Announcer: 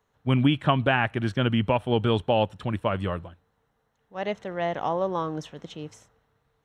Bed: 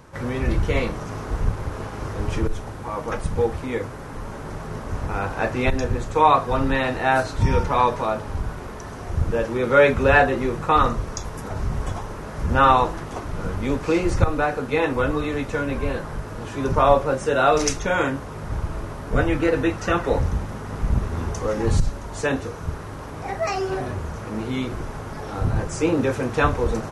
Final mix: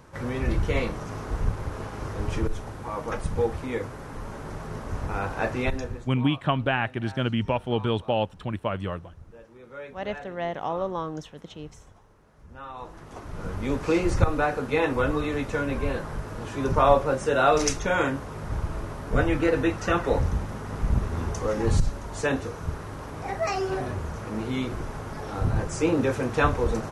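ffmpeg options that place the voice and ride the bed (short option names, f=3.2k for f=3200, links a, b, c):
-filter_complex "[0:a]adelay=5800,volume=-2.5dB[a];[1:a]volume=19.5dB,afade=t=out:st=5.53:d=0.62:silence=0.0794328,afade=t=in:st=12.73:d=1.14:silence=0.0707946[b];[a][b]amix=inputs=2:normalize=0"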